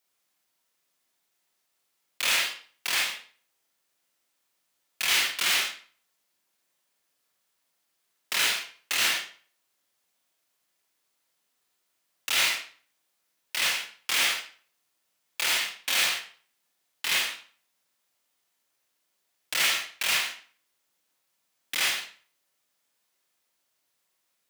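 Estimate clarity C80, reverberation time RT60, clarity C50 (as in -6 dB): 10.5 dB, 0.45 s, 5.0 dB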